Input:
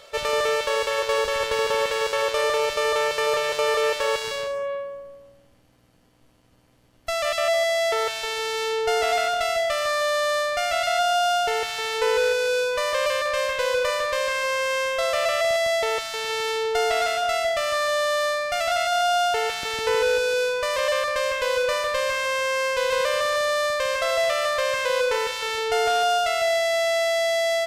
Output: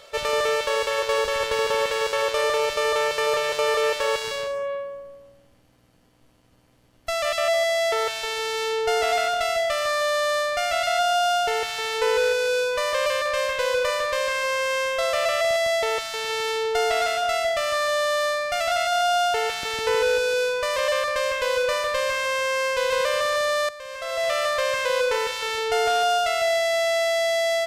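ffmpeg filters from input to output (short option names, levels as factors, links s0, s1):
-filter_complex "[0:a]asplit=2[s0][s1];[s0]atrim=end=23.69,asetpts=PTS-STARTPTS,afade=t=out:st=23.686:d=0.004:c=hsin:silence=0.177828[s2];[s1]atrim=start=23.69,asetpts=PTS-STARTPTS,afade=t=in:d=0.65:c=qua:silence=0.177828[s3];[s2][s3]concat=n=2:v=0:a=1"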